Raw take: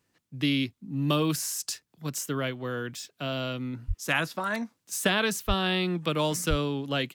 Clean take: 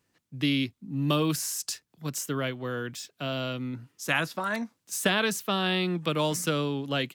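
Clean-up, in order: clip repair -11.5 dBFS; 3.87–3.99 HPF 140 Hz 24 dB/oct; 5.47–5.59 HPF 140 Hz 24 dB/oct; 6.49–6.61 HPF 140 Hz 24 dB/oct

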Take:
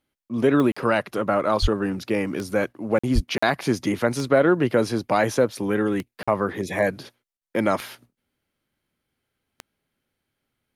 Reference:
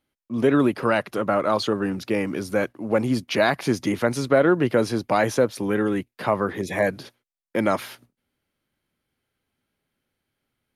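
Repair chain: de-click; de-plosive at 1.61/3.14; interpolate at 0.72/2.99/3.38/6.23/7.37, 45 ms

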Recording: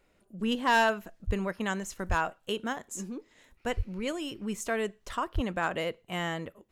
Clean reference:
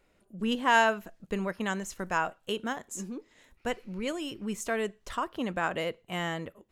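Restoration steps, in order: clip repair -18 dBFS; de-plosive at 1.26/2.08/3.76/5.34

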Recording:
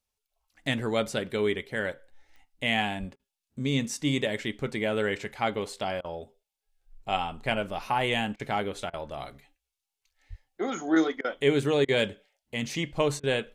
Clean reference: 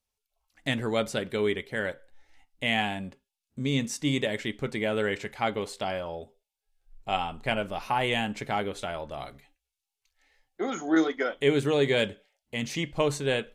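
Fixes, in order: de-click; 2.99–3.11 HPF 140 Hz 24 dB/oct; 10.29–10.41 HPF 140 Hz 24 dB/oct; interpolate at 3.16/6.01/8.36/8.9/11.21/11.85/13.2, 33 ms

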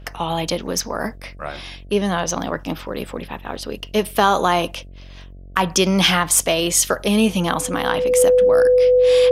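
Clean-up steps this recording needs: de-hum 46 Hz, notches 15; notch 500 Hz, Q 30

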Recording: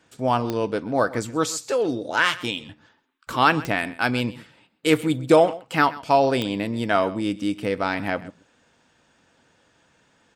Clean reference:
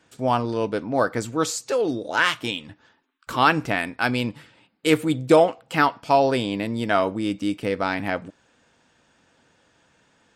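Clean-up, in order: de-click; inverse comb 0.13 s -18.5 dB

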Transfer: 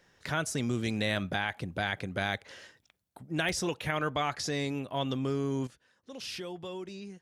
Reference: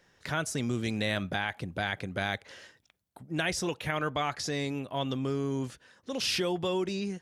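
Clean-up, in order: interpolate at 3.49, 2 ms; gain correction +10 dB, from 5.67

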